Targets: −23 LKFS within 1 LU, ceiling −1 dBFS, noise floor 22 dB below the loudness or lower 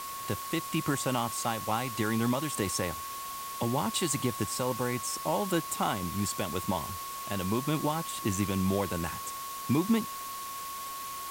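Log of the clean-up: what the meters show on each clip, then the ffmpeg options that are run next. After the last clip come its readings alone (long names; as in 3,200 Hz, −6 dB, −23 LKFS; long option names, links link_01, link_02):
interfering tone 1,100 Hz; level of the tone −38 dBFS; background noise floor −39 dBFS; target noise floor −54 dBFS; integrated loudness −31.5 LKFS; sample peak −16.0 dBFS; target loudness −23.0 LKFS
→ -af "bandreject=frequency=1100:width=30"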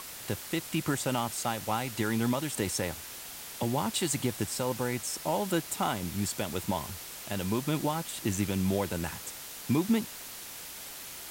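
interfering tone none found; background noise floor −44 dBFS; target noise floor −54 dBFS
→ -af "afftdn=noise_reduction=10:noise_floor=-44"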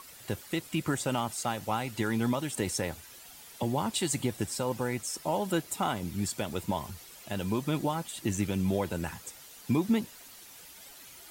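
background noise floor −51 dBFS; target noise floor −54 dBFS
→ -af "afftdn=noise_reduction=6:noise_floor=-51"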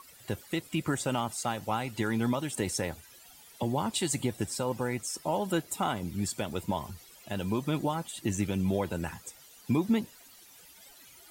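background noise floor −55 dBFS; integrated loudness −32.0 LKFS; sample peak −17.5 dBFS; target loudness −23.0 LKFS
→ -af "volume=9dB"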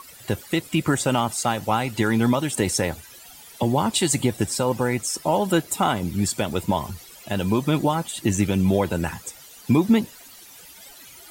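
integrated loudness −23.0 LKFS; sample peak −8.5 dBFS; background noise floor −46 dBFS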